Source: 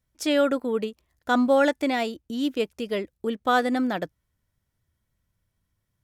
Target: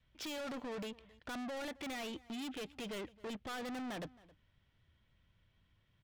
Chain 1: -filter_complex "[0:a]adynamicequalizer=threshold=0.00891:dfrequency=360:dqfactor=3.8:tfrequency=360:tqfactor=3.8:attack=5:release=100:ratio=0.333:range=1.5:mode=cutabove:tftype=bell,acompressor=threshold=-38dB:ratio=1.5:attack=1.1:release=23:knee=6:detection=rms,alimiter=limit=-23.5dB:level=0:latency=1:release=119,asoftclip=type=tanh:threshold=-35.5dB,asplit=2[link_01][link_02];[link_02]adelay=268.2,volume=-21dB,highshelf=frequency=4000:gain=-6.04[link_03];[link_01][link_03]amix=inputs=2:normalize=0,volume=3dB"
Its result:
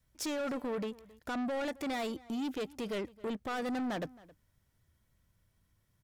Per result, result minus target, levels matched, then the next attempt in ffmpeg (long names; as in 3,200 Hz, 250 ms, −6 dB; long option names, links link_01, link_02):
4,000 Hz band −5.0 dB; soft clipping: distortion −4 dB
-filter_complex "[0:a]adynamicequalizer=threshold=0.00891:dfrequency=360:dqfactor=3.8:tfrequency=360:tqfactor=3.8:attack=5:release=100:ratio=0.333:range=1.5:mode=cutabove:tftype=bell,lowpass=frequency=3100:width_type=q:width=2.6,acompressor=threshold=-38dB:ratio=1.5:attack=1.1:release=23:knee=6:detection=rms,alimiter=limit=-23.5dB:level=0:latency=1:release=119,asoftclip=type=tanh:threshold=-35.5dB,asplit=2[link_01][link_02];[link_02]adelay=268.2,volume=-21dB,highshelf=frequency=4000:gain=-6.04[link_03];[link_01][link_03]amix=inputs=2:normalize=0,volume=3dB"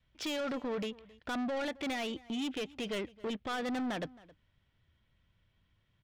soft clipping: distortion −4 dB
-filter_complex "[0:a]adynamicequalizer=threshold=0.00891:dfrequency=360:dqfactor=3.8:tfrequency=360:tqfactor=3.8:attack=5:release=100:ratio=0.333:range=1.5:mode=cutabove:tftype=bell,lowpass=frequency=3100:width_type=q:width=2.6,acompressor=threshold=-38dB:ratio=1.5:attack=1.1:release=23:knee=6:detection=rms,alimiter=limit=-23.5dB:level=0:latency=1:release=119,asoftclip=type=tanh:threshold=-44dB,asplit=2[link_01][link_02];[link_02]adelay=268.2,volume=-21dB,highshelf=frequency=4000:gain=-6.04[link_03];[link_01][link_03]amix=inputs=2:normalize=0,volume=3dB"